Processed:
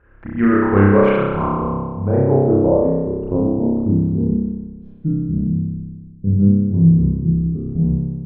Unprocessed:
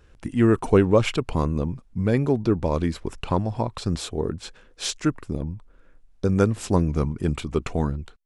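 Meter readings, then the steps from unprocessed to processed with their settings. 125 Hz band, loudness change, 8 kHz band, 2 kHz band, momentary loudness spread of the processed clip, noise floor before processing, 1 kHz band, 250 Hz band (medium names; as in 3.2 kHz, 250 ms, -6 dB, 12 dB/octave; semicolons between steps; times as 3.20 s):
+8.0 dB, +7.0 dB, under -40 dB, no reading, 12 LU, -54 dBFS, +5.5 dB, +8.0 dB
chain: local Wiener filter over 9 samples; spring tank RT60 1.6 s, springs 30 ms, chirp 35 ms, DRR -7.5 dB; short-mantissa float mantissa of 8-bit; low-pass sweep 1.7 kHz -> 170 Hz, 1.03–4.73 s; gain riding within 4 dB 2 s; trim -3.5 dB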